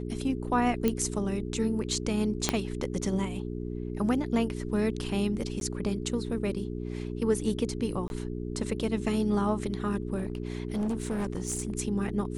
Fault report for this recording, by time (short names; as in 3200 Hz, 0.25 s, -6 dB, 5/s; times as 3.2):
hum 60 Hz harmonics 7 -35 dBFS
0.88 pop -13 dBFS
2.49 pop -8 dBFS
5.6–5.61 gap
8.08–8.1 gap 21 ms
10.17–11.73 clipped -26 dBFS